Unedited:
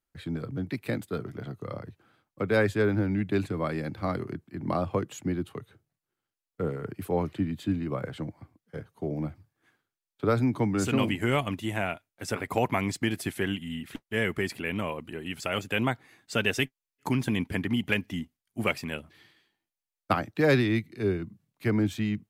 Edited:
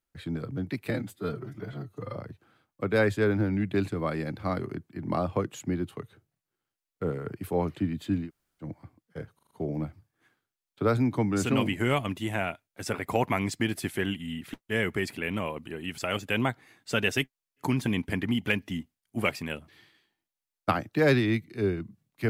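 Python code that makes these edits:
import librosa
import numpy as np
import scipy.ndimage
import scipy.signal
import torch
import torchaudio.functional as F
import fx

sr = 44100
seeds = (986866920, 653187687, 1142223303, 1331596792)

y = fx.edit(x, sr, fx.stretch_span(start_s=0.9, length_s=0.84, factor=1.5),
    fx.room_tone_fill(start_s=7.84, length_s=0.38, crossfade_s=0.1),
    fx.stutter(start_s=8.93, slice_s=0.04, count=5), tone=tone)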